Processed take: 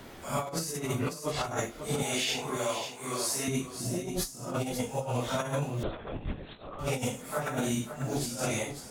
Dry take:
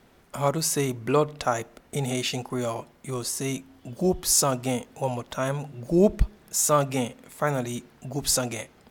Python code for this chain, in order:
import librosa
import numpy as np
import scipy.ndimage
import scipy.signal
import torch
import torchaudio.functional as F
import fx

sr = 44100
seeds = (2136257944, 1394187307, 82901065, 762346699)

y = fx.phase_scramble(x, sr, seeds[0], window_ms=200)
y = fx.highpass(y, sr, hz=820.0, slope=6, at=(2.02, 3.48))
y = fx.over_compress(y, sr, threshold_db=-30.0, ratio=-0.5)
y = y + 10.0 ** (-11.0 / 20.0) * np.pad(y, (int(542 * sr / 1000.0), 0))[:len(y)]
y = fx.lpc_vocoder(y, sr, seeds[1], excitation='whisper', order=10, at=(5.83, 6.79))
y = fx.band_squash(y, sr, depth_pct=40)
y = y * librosa.db_to_amplitude(-2.0)